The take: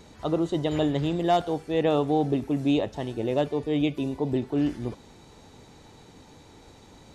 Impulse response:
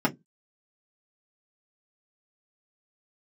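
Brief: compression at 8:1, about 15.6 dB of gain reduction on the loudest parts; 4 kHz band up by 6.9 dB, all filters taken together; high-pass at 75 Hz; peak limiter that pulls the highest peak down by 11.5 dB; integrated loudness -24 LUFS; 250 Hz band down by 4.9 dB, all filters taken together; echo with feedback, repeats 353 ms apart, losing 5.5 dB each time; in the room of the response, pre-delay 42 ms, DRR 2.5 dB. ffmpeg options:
-filter_complex "[0:a]highpass=75,equalizer=f=250:t=o:g=-6.5,equalizer=f=4000:t=o:g=8.5,acompressor=threshold=0.02:ratio=8,alimiter=level_in=2.51:limit=0.0631:level=0:latency=1,volume=0.398,aecho=1:1:353|706|1059|1412|1765|2118|2471:0.531|0.281|0.149|0.079|0.0419|0.0222|0.0118,asplit=2[s0][s1];[1:a]atrim=start_sample=2205,adelay=42[s2];[s1][s2]afir=irnorm=-1:irlink=0,volume=0.178[s3];[s0][s3]amix=inputs=2:normalize=0,volume=4.47"

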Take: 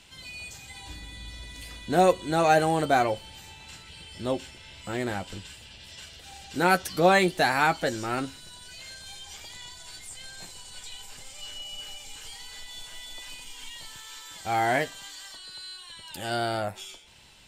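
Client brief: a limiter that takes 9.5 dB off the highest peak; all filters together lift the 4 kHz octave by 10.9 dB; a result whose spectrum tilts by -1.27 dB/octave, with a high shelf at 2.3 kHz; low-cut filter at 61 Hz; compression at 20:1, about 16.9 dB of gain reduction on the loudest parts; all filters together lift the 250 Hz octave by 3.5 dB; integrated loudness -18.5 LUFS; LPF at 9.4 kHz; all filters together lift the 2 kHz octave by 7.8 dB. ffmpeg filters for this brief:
-af "highpass=61,lowpass=9400,equalizer=f=250:t=o:g=5,equalizer=f=2000:t=o:g=5,highshelf=f=2300:g=9,equalizer=f=4000:t=o:g=4,acompressor=threshold=0.0398:ratio=20,volume=5.31,alimiter=limit=0.335:level=0:latency=1"

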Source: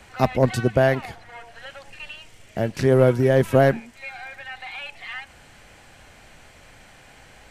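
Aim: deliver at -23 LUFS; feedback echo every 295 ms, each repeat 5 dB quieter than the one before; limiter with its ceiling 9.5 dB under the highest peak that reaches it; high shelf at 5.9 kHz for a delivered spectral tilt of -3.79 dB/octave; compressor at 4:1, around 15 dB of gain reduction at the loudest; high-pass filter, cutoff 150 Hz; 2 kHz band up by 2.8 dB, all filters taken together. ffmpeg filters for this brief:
-af "highpass=150,equalizer=f=2000:t=o:g=3,highshelf=f=5900:g=4.5,acompressor=threshold=0.0282:ratio=4,alimiter=level_in=1.26:limit=0.0631:level=0:latency=1,volume=0.794,aecho=1:1:295|590|885|1180|1475|1770|2065:0.562|0.315|0.176|0.0988|0.0553|0.031|0.0173,volume=4.73"

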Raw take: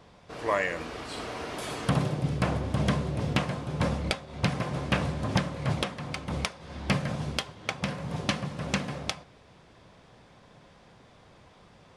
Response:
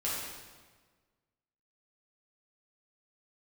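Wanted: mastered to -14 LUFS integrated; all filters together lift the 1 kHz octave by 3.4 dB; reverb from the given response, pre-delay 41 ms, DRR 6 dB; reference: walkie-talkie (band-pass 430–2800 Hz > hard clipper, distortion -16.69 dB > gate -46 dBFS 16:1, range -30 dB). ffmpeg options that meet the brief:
-filter_complex "[0:a]equalizer=f=1000:t=o:g=4.5,asplit=2[s0][s1];[1:a]atrim=start_sample=2205,adelay=41[s2];[s1][s2]afir=irnorm=-1:irlink=0,volume=0.251[s3];[s0][s3]amix=inputs=2:normalize=0,highpass=430,lowpass=2800,asoftclip=type=hard:threshold=0.1,agate=range=0.0316:threshold=0.00501:ratio=16,volume=8.91"

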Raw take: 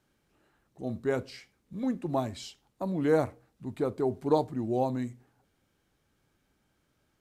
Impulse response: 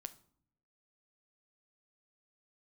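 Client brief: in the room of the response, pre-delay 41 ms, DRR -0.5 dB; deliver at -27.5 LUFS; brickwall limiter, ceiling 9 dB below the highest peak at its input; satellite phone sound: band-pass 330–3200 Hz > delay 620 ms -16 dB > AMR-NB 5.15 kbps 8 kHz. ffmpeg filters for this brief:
-filter_complex "[0:a]alimiter=limit=0.1:level=0:latency=1,asplit=2[s0][s1];[1:a]atrim=start_sample=2205,adelay=41[s2];[s1][s2]afir=irnorm=-1:irlink=0,volume=1.78[s3];[s0][s3]amix=inputs=2:normalize=0,highpass=330,lowpass=3200,aecho=1:1:620:0.158,volume=2" -ar 8000 -c:a libopencore_amrnb -b:a 5150

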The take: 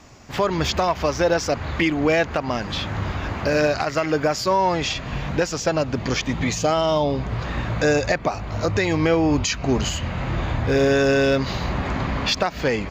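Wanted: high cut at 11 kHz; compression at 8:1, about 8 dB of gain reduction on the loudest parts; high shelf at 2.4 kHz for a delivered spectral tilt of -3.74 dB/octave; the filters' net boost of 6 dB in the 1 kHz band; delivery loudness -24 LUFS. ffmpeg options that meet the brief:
-af "lowpass=11000,equalizer=f=1000:t=o:g=6,highshelf=f=2400:g=8.5,acompressor=threshold=0.112:ratio=8,volume=0.944"

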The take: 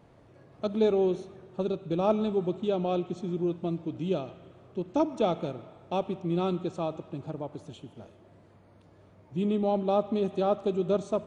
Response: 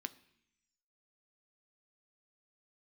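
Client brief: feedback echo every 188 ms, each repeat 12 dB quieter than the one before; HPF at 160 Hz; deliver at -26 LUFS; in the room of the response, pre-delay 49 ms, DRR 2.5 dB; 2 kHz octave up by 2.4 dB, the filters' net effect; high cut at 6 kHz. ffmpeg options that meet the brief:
-filter_complex "[0:a]highpass=160,lowpass=6000,equalizer=f=2000:t=o:g=3.5,aecho=1:1:188|376|564:0.251|0.0628|0.0157,asplit=2[s0][s1];[1:a]atrim=start_sample=2205,adelay=49[s2];[s1][s2]afir=irnorm=-1:irlink=0,volume=0.944[s3];[s0][s3]amix=inputs=2:normalize=0,volume=1.33"

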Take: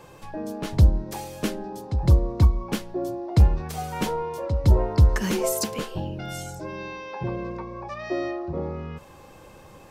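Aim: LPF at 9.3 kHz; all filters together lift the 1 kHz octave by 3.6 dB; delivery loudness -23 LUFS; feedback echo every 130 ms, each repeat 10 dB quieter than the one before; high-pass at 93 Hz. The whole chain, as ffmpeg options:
-af "highpass=93,lowpass=9300,equalizer=f=1000:t=o:g=4.5,aecho=1:1:130|260|390|520:0.316|0.101|0.0324|0.0104,volume=1.68"

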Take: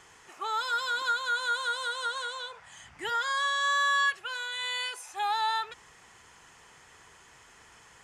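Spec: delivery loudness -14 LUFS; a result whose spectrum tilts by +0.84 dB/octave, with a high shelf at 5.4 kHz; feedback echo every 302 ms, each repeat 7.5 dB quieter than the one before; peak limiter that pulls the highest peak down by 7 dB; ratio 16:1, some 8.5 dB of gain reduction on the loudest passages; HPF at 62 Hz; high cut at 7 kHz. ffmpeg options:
-af "highpass=62,lowpass=7000,highshelf=f=5400:g=8.5,acompressor=threshold=0.0316:ratio=16,alimiter=level_in=2.11:limit=0.0631:level=0:latency=1,volume=0.473,aecho=1:1:302|604|906|1208|1510:0.422|0.177|0.0744|0.0312|0.0131,volume=14.1"

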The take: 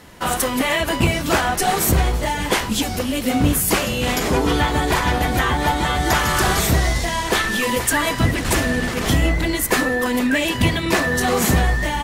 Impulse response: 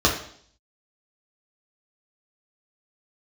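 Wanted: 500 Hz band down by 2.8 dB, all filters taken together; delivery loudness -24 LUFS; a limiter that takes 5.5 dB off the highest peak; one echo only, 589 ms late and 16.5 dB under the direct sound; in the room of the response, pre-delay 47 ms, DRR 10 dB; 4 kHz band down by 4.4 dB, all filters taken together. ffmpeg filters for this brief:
-filter_complex "[0:a]equalizer=f=500:t=o:g=-3.5,equalizer=f=4000:t=o:g=-6,alimiter=limit=0.251:level=0:latency=1,aecho=1:1:589:0.15,asplit=2[s0][s1];[1:a]atrim=start_sample=2205,adelay=47[s2];[s1][s2]afir=irnorm=-1:irlink=0,volume=0.0398[s3];[s0][s3]amix=inputs=2:normalize=0,volume=0.668"

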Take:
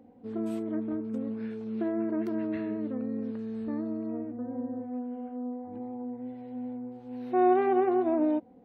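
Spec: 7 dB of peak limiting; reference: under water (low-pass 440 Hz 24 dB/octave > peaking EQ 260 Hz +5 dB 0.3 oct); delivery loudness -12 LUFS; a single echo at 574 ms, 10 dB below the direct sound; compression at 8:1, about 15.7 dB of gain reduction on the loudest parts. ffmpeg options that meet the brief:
-af "acompressor=threshold=0.0178:ratio=8,alimiter=level_in=2.51:limit=0.0631:level=0:latency=1,volume=0.398,lowpass=f=440:w=0.5412,lowpass=f=440:w=1.3066,equalizer=f=260:t=o:w=0.3:g=5,aecho=1:1:574:0.316,volume=20"

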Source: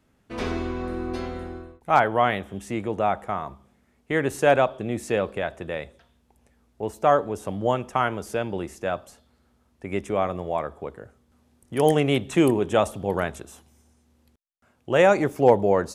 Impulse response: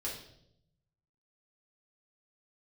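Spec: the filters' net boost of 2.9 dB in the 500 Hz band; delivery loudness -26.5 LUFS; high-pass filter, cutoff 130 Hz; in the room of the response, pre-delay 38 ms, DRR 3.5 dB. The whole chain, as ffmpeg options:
-filter_complex "[0:a]highpass=130,equalizer=f=500:t=o:g=3.5,asplit=2[s0][s1];[1:a]atrim=start_sample=2205,adelay=38[s2];[s1][s2]afir=irnorm=-1:irlink=0,volume=0.562[s3];[s0][s3]amix=inputs=2:normalize=0,volume=0.473"

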